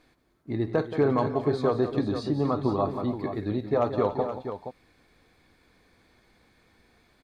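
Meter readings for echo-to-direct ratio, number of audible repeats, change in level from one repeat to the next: −6.0 dB, 4, repeats not evenly spaced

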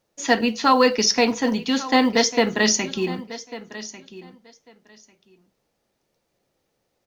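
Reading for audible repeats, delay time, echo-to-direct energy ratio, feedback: 2, 1,146 ms, −16.0 dB, 16%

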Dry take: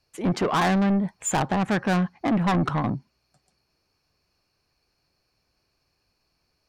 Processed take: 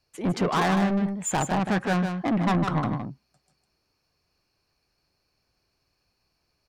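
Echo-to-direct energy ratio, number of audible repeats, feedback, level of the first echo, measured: −6.5 dB, 1, repeats not evenly spaced, −6.5 dB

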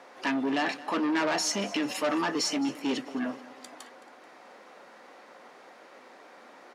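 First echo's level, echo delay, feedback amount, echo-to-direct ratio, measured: −18.5 dB, 217 ms, 49%, −17.5 dB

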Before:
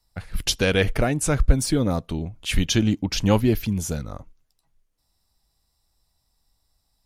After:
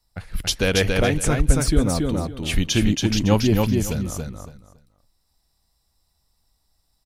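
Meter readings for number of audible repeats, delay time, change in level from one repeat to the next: 3, 279 ms, −13.5 dB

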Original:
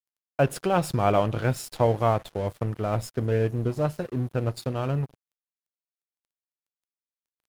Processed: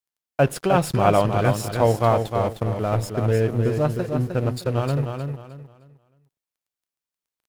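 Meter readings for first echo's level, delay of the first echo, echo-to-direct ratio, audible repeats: −6.0 dB, 308 ms, −5.5 dB, 3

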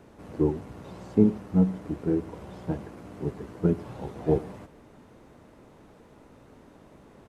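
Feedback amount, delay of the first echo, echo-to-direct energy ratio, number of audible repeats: repeats not evenly spaced, 112 ms, −22.5 dB, 1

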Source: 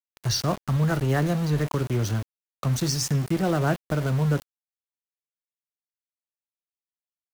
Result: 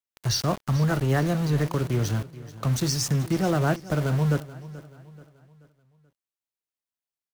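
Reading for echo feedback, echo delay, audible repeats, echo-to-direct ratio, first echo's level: 43%, 432 ms, 3, −16.5 dB, −17.5 dB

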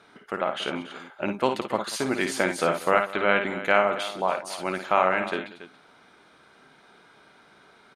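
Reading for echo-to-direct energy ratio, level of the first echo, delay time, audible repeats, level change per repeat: −6.0 dB, −7.5 dB, 54 ms, 3, repeats not evenly spaced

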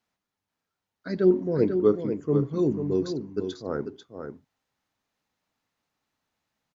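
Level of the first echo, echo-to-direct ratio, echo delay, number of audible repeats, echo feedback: −7.5 dB, −7.5 dB, 492 ms, 1, repeats not evenly spaced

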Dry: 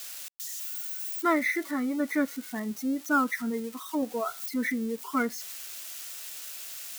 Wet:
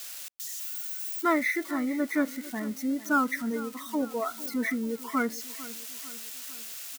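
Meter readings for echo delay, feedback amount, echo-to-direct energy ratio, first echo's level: 449 ms, 51%, −15.5 dB, −17.0 dB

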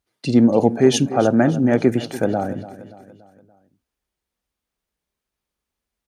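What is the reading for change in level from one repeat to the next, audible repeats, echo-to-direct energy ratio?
−6.0 dB, 4, −14.5 dB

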